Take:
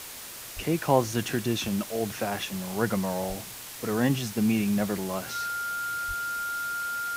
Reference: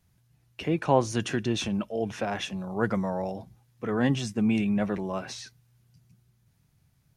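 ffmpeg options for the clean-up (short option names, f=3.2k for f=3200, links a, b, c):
-filter_complex "[0:a]bandreject=f=1.4k:w=30,asplit=3[a][b][c];[a]afade=t=out:st=0.55:d=0.02[d];[b]highpass=f=140:w=0.5412,highpass=f=140:w=1.3066,afade=t=in:st=0.55:d=0.02,afade=t=out:st=0.67:d=0.02[e];[c]afade=t=in:st=0.67:d=0.02[f];[d][e][f]amix=inputs=3:normalize=0,asplit=3[g][h][i];[g]afade=t=out:st=3.28:d=0.02[j];[h]highpass=f=140:w=0.5412,highpass=f=140:w=1.3066,afade=t=in:st=3.28:d=0.02,afade=t=out:st=3.4:d=0.02[k];[i]afade=t=in:st=3.4:d=0.02[l];[j][k][l]amix=inputs=3:normalize=0,asplit=3[m][n][o];[m]afade=t=out:st=6.07:d=0.02[p];[n]highpass=f=140:w=0.5412,highpass=f=140:w=1.3066,afade=t=in:st=6.07:d=0.02,afade=t=out:st=6.19:d=0.02[q];[o]afade=t=in:st=6.19:d=0.02[r];[p][q][r]amix=inputs=3:normalize=0,afwtdn=0.01"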